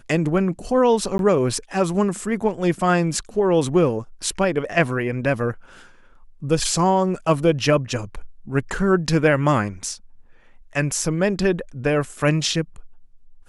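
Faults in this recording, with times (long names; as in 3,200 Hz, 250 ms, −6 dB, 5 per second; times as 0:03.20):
0:01.18–0:01.19: drop-out 12 ms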